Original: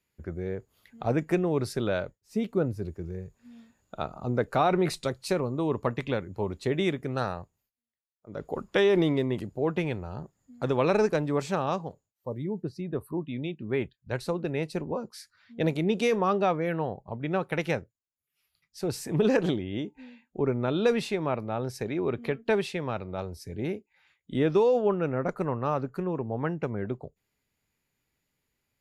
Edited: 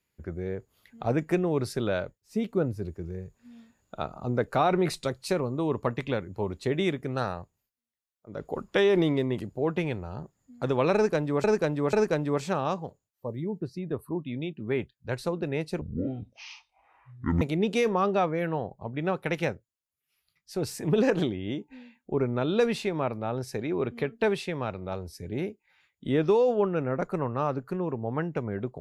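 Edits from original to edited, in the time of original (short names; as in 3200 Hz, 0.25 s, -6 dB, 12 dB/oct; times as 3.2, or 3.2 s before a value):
10.95–11.44 loop, 3 plays
14.83–15.68 speed 53%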